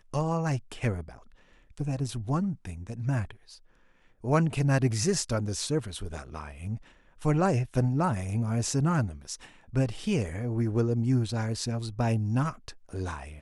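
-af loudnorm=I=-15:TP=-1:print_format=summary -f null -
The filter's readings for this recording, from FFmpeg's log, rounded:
Input Integrated:    -29.3 LUFS
Input True Peak:     -10.6 dBTP
Input LRA:             3.7 LU
Input Threshold:     -39.9 LUFS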